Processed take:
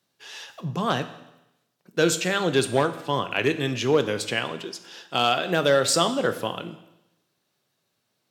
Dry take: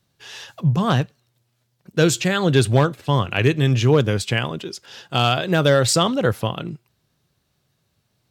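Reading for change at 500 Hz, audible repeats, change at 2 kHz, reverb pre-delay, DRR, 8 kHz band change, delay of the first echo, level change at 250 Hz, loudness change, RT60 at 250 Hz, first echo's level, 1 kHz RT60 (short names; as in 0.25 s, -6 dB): -3.0 dB, none, -2.5 dB, 12 ms, 10.0 dB, -2.5 dB, none, -6.5 dB, -4.5 dB, 0.90 s, none, 0.90 s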